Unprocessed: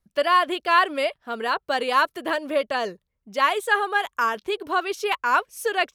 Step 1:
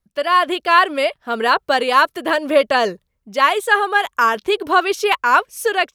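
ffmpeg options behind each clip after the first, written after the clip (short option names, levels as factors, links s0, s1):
-af "dynaudnorm=f=230:g=3:m=3.76"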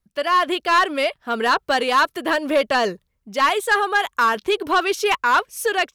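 -af "equalizer=f=570:w=1.5:g=-2.5,asoftclip=type=tanh:threshold=0.316"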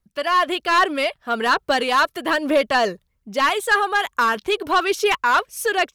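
-af "aphaser=in_gain=1:out_gain=1:delay=1.8:decay=0.26:speed=1.2:type=triangular"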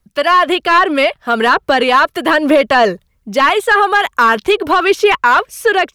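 -filter_complex "[0:a]acrossover=split=360|3400[s0][s1][s2];[s2]acompressor=threshold=0.01:ratio=6[s3];[s0][s1][s3]amix=inputs=3:normalize=0,alimiter=level_in=3.55:limit=0.891:release=50:level=0:latency=1,volume=0.891"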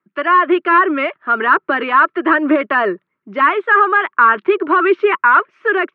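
-af "highpass=f=210:w=0.5412,highpass=f=210:w=1.3066,equalizer=f=230:t=q:w=4:g=-7,equalizer=f=350:t=q:w=4:g=7,equalizer=f=500:t=q:w=4:g=-10,equalizer=f=760:t=q:w=4:g=-10,equalizer=f=1300:t=q:w=4:g=6,lowpass=f=2200:w=0.5412,lowpass=f=2200:w=1.3066,volume=0.841"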